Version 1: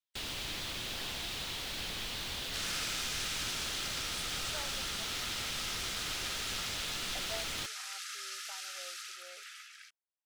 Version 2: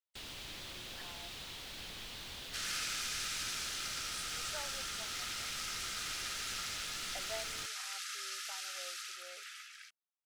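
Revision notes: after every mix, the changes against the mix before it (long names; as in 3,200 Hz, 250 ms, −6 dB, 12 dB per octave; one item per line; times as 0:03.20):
first sound −7.5 dB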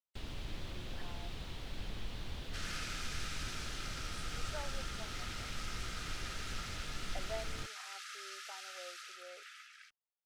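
master: add spectral tilt −3 dB per octave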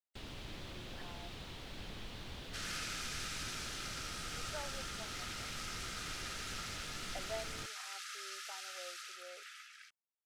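second sound: add high-shelf EQ 5,600 Hz +5 dB
master: add low-shelf EQ 75 Hz −10 dB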